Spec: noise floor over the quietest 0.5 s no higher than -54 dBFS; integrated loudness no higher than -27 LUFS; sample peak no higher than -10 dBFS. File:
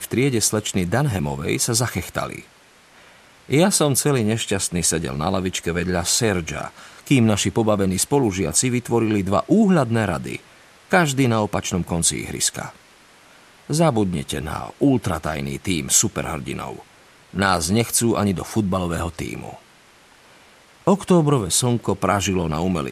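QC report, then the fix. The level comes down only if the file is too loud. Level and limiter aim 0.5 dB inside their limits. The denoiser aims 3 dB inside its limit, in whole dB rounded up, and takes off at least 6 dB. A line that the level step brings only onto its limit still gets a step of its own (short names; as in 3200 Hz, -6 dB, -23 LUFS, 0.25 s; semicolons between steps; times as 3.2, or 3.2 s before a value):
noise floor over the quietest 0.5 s -51 dBFS: fail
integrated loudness -20.5 LUFS: fail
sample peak -2.5 dBFS: fail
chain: gain -7 dB; limiter -10.5 dBFS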